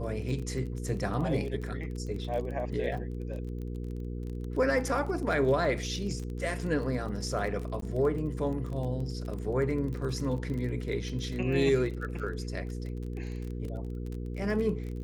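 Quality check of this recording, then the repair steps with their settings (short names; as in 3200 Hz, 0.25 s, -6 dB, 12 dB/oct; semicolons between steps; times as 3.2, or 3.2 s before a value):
crackle 25/s -36 dBFS
hum 60 Hz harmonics 8 -36 dBFS
7.81–7.82 gap 13 ms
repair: de-click; de-hum 60 Hz, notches 8; interpolate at 7.81, 13 ms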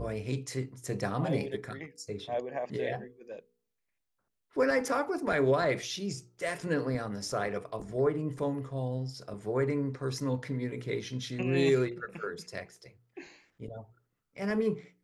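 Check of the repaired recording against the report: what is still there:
none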